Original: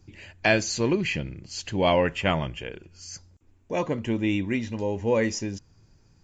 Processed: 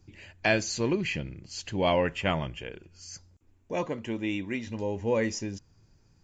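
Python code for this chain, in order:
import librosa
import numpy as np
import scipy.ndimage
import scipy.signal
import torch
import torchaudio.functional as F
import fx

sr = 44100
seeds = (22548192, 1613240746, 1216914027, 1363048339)

y = fx.low_shelf(x, sr, hz=190.0, db=-8.5, at=(3.87, 4.67))
y = F.gain(torch.from_numpy(y), -3.5).numpy()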